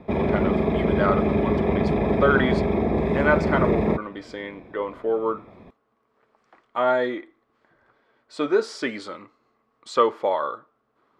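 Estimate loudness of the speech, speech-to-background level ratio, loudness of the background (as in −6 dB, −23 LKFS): −26.0 LKFS, −3.5 dB, −22.5 LKFS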